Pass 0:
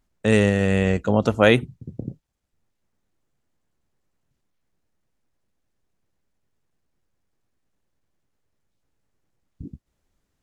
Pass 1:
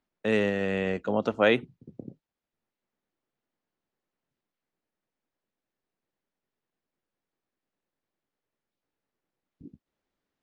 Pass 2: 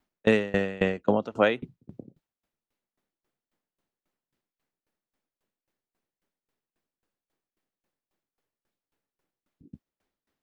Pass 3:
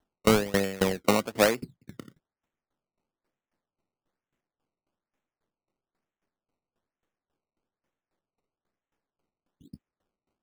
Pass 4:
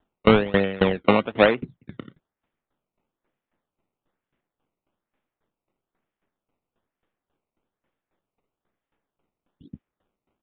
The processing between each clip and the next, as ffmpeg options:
-filter_complex "[0:a]acrossover=split=190 5200:gain=0.178 1 0.112[a][b][c];[a][b][c]amix=inputs=3:normalize=0,volume=-5.5dB"
-af "aeval=exprs='val(0)*pow(10,-24*if(lt(mod(3.7*n/s,1),2*abs(3.7)/1000),1-mod(3.7*n/s,1)/(2*abs(3.7)/1000),(mod(3.7*n/s,1)-2*abs(3.7)/1000)/(1-2*abs(3.7)/1000))/20)':c=same,volume=8.5dB"
-af "acrusher=samples=18:mix=1:aa=0.000001:lfo=1:lforange=18:lforate=1.1"
-af "aresample=8000,aresample=44100,volume=5.5dB"

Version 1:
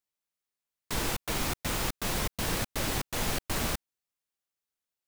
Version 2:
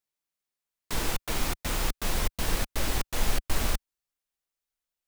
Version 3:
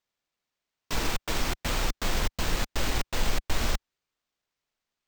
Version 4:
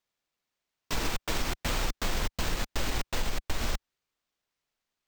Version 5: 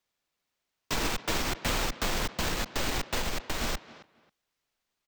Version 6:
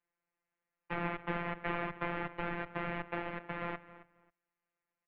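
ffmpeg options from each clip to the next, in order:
-af "asubboost=boost=5:cutoff=56"
-filter_complex "[0:a]asplit=2[a][b];[b]alimiter=limit=-19dB:level=0:latency=1:release=101,volume=-1dB[c];[a][c]amix=inputs=2:normalize=0,acrusher=samples=4:mix=1:aa=0.000001,volume=-4dB"
-af "acompressor=threshold=-24dB:ratio=6"
-filter_complex "[0:a]acrossover=split=130|6500[a][b][c];[a]alimiter=level_in=7dB:limit=-24dB:level=0:latency=1,volume=-7dB[d];[b]asplit=2[e][f];[f]adelay=270,lowpass=f=3.8k:p=1,volume=-16dB,asplit=2[g][h];[h]adelay=270,lowpass=f=3.8k:p=1,volume=0.2[i];[e][g][i]amix=inputs=3:normalize=0[j];[d][j][c]amix=inputs=3:normalize=0,volume=2.5dB"
-af "highpass=f=160:t=q:w=0.5412,highpass=f=160:t=q:w=1.307,lowpass=f=2.5k:t=q:w=0.5176,lowpass=f=2.5k:t=q:w=0.7071,lowpass=f=2.5k:t=q:w=1.932,afreqshift=-140,afftfilt=real='hypot(re,im)*cos(PI*b)':imag='0':win_size=1024:overlap=0.75"

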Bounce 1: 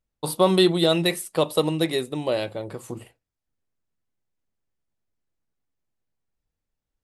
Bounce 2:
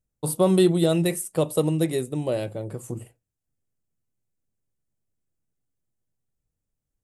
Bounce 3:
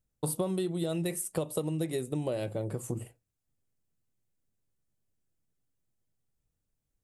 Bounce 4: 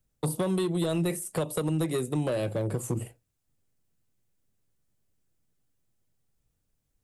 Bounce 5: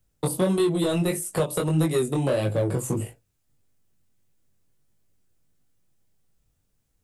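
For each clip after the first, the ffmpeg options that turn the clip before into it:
-af "equalizer=f=125:t=o:w=1:g=6,equalizer=f=1k:t=o:w=1:g=-6,equalizer=f=2k:t=o:w=1:g=-4,equalizer=f=4k:t=o:w=1:g=-10,equalizer=f=8k:t=o:w=1:g=5"
-af "acompressor=threshold=-28dB:ratio=12"
-filter_complex "[0:a]acrossover=split=190|920[a][b][c];[b]asoftclip=type=hard:threshold=-32dB[d];[c]alimiter=level_in=9dB:limit=-24dB:level=0:latency=1:release=21,volume=-9dB[e];[a][d][e]amix=inputs=3:normalize=0,volume=5.5dB"
-af "flanger=delay=19:depth=3.4:speed=1.6,volume=8dB"

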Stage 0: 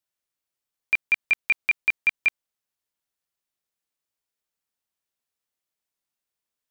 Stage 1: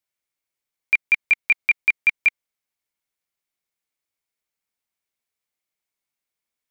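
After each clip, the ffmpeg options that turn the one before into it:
-af "equalizer=f=2.2k:w=7.2:g=8.5"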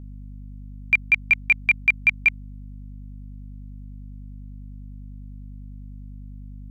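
-af "aeval=exprs='val(0)+0.0141*(sin(2*PI*50*n/s)+sin(2*PI*2*50*n/s)/2+sin(2*PI*3*50*n/s)/3+sin(2*PI*4*50*n/s)/4+sin(2*PI*5*50*n/s)/5)':c=same"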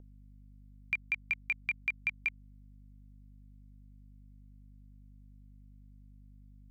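-filter_complex "[0:a]acrossover=split=670|2000[a][b][c];[a]acompressor=threshold=-46dB:ratio=4[d];[b]acompressor=threshold=-31dB:ratio=4[e];[c]acompressor=threshold=-26dB:ratio=4[f];[d][e][f]amix=inputs=3:normalize=0,volume=-8.5dB"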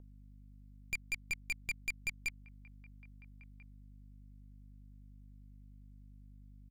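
-filter_complex "[0:a]asplit=2[a][b];[b]adelay=1341,volume=-21dB,highshelf=f=4k:g=-30.2[c];[a][c]amix=inputs=2:normalize=0,aeval=exprs='(tanh(56.2*val(0)+0.7)-tanh(0.7))/56.2':c=same,volume=3dB"

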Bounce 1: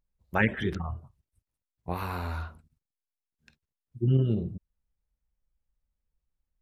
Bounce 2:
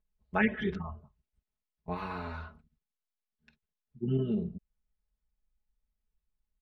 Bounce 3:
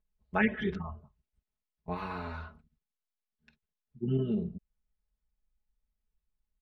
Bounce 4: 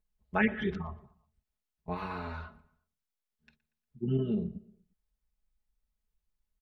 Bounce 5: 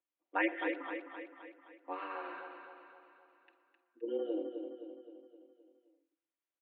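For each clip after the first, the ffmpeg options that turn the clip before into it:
-af "lowpass=3.9k,aecho=1:1:4.7:0.96,volume=-5.5dB"
-af anull
-filter_complex "[0:a]asplit=2[a][b];[b]adelay=118,lowpass=f=3.2k:p=1,volume=-20.5dB,asplit=2[c][d];[d]adelay=118,lowpass=f=3.2k:p=1,volume=0.47,asplit=2[e][f];[f]adelay=118,lowpass=f=3.2k:p=1,volume=0.47[g];[a][c][e][g]amix=inputs=4:normalize=0"
-af "highpass=f=220:t=q:w=0.5412,highpass=f=220:t=q:w=1.307,lowpass=f=3.2k:t=q:w=0.5176,lowpass=f=3.2k:t=q:w=0.7071,lowpass=f=3.2k:t=q:w=1.932,afreqshift=110,aecho=1:1:260|520|780|1040|1300|1560:0.447|0.237|0.125|0.0665|0.0352|0.0187,volume=-3.5dB"

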